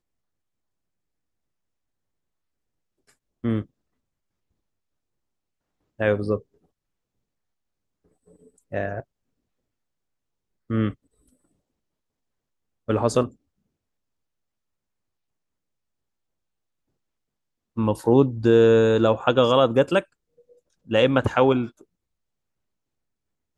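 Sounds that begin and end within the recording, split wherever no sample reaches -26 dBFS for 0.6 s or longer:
3.45–3.61
6.01–6.36
8.73–9
10.7–10.9
12.89–13.26
17.78–20
20.91–21.66

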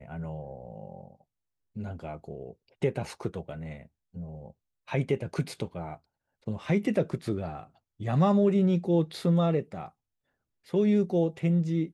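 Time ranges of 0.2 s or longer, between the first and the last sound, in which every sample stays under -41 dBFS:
1.1–1.76
2.51–2.82
3.86–4.15
4.5–4.88
5.96–6.47
7.64–8
9.88–10.73

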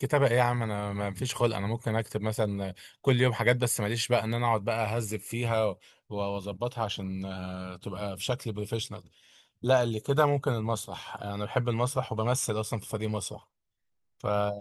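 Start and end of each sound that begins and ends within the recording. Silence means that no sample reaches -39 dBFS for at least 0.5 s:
9.63–13.38

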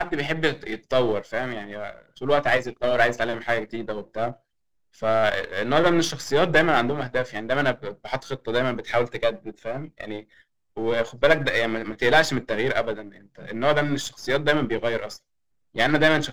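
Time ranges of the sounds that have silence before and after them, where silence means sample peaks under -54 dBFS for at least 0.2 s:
4.93–10.43
10.76–15.19

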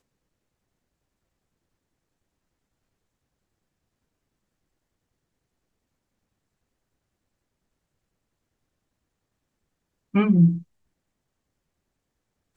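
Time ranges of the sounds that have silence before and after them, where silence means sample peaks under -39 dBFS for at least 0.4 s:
10.14–10.62

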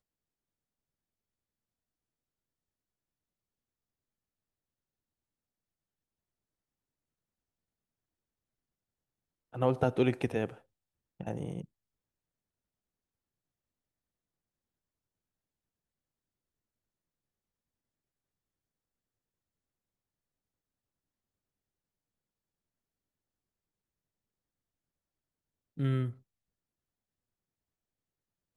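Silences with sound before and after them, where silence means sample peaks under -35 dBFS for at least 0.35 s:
10.49–11.21
11.61–25.79

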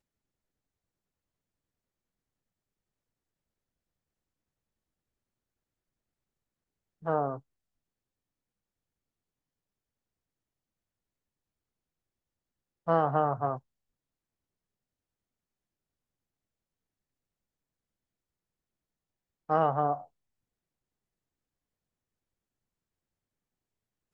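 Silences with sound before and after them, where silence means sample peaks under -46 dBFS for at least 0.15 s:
7.39–12.87
13.59–19.49

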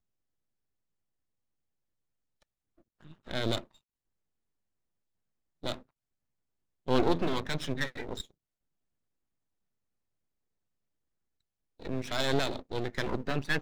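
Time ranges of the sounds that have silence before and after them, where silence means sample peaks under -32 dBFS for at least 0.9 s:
3.3–3.59
5.64–5.74
6.88–8.21

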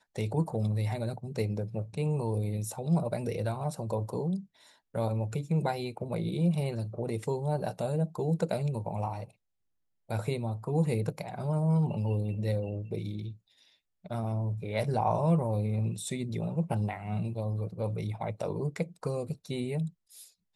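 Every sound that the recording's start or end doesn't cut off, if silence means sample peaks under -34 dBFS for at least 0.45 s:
4.95–9.23
10.11–13.3
14.11–19.88

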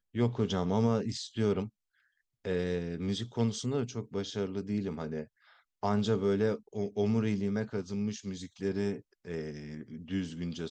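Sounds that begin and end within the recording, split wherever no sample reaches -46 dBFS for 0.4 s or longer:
2.45–5.25

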